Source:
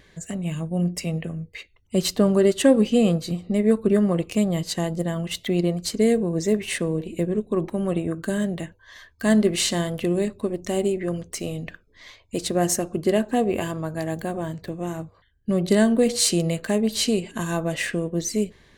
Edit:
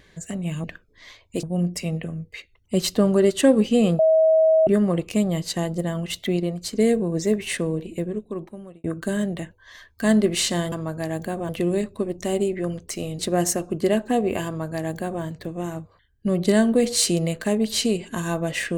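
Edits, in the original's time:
3.20–3.88 s: bleep 639 Hz -13 dBFS
5.58–5.96 s: gain -3 dB
6.89–8.05 s: fade out
11.63–12.42 s: move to 0.64 s
13.69–14.46 s: copy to 9.93 s

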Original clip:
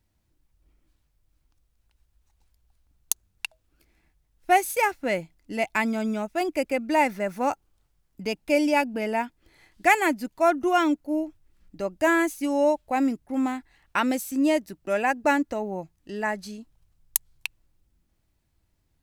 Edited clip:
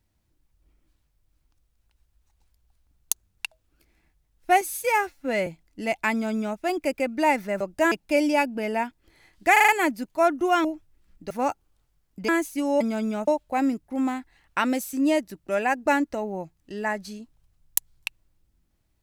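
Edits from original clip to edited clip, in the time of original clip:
4.61–5.18 s: stretch 1.5×
5.83–6.30 s: copy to 12.66 s
7.32–8.30 s: swap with 11.83–12.14 s
9.91 s: stutter 0.04 s, 5 plays
10.87–11.17 s: delete

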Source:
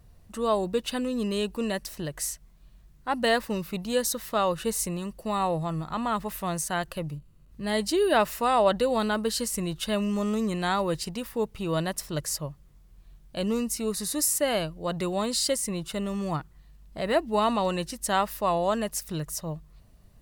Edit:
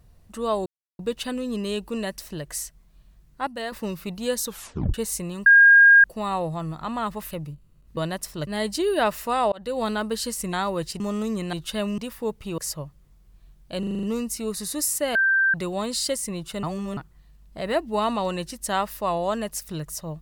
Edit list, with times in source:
0.66 s: insert silence 0.33 s
3.14–3.39 s: gain -8.5 dB
4.12 s: tape stop 0.49 s
5.13 s: add tone 1.62 kHz -9 dBFS 0.58 s
6.40–6.95 s: delete
8.66–8.96 s: fade in
9.67–10.12 s: swap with 10.65–11.12 s
11.72–12.22 s: move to 7.61 s
13.43 s: stutter 0.04 s, 7 plays
14.55–14.94 s: bleep 1.57 kHz -16.5 dBFS
16.03–16.37 s: reverse

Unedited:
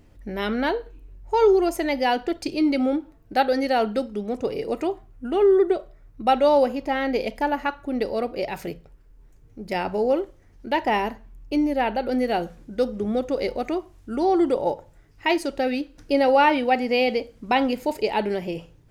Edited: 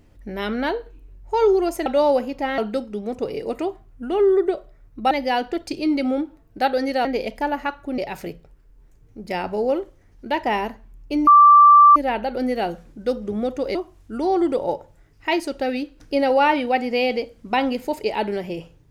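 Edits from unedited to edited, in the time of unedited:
1.86–3.80 s: swap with 6.33–7.05 s
7.98–8.39 s: delete
11.68 s: add tone 1.17 kHz -6.5 dBFS 0.69 s
13.47–13.73 s: delete

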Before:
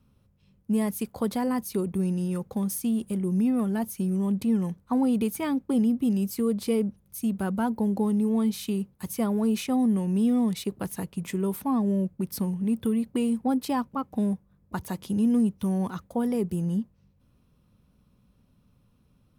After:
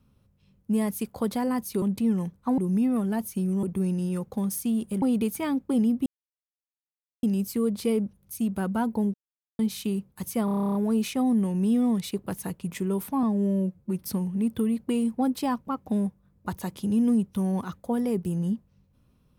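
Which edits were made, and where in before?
1.82–3.21 s: swap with 4.26–5.02 s
6.06 s: insert silence 1.17 s
7.97–8.42 s: mute
9.28 s: stutter 0.03 s, 11 plays
11.76–12.29 s: stretch 1.5×

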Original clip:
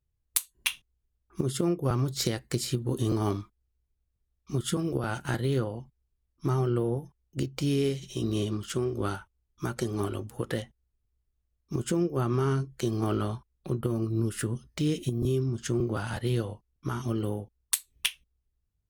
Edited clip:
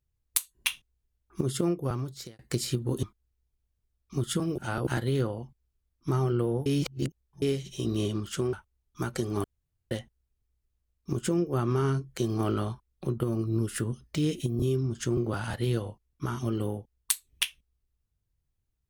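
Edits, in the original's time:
1.65–2.39 s: fade out
3.03–3.40 s: delete
4.95–5.24 s: reverse
7.03–7.79 s: reverse
8.90–9.16 s: delete
10.07–10.54 s: room tone

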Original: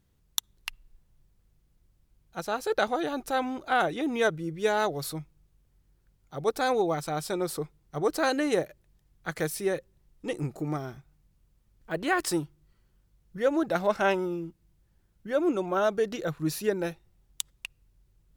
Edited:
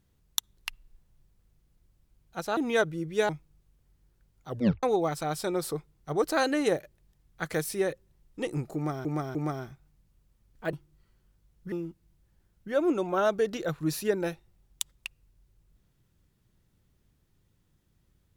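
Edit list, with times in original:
2.57–4.03 s: delete
4.75–5.15 s: delete
6.35 s: tape stop 0.34 s
10.61–10.91 s: loop, 3 plays
11.99–12.42 s: delete
13.41–14.31 s: delete

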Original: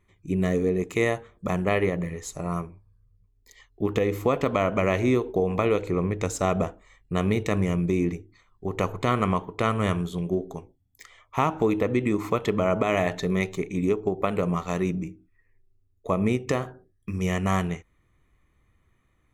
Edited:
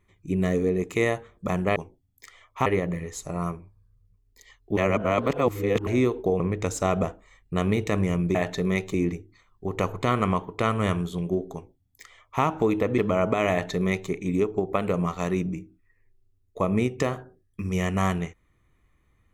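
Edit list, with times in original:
3.87–4.97 s: reverse
5.50–5.99 s: delete
10.53–11.43 s: copy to 1.76 s
11.98–12.47 s: delete
13.00–13.59 s: copy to 7.94 s

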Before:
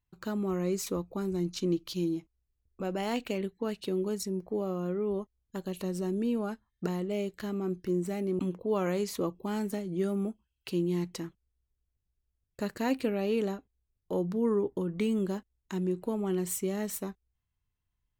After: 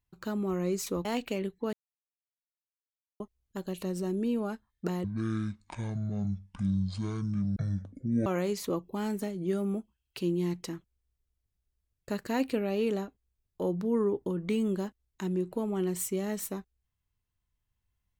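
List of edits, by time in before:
1.05–3.04 s: delete
3.72–5.19 s: mute
7.03–8.77 s: speed 54%

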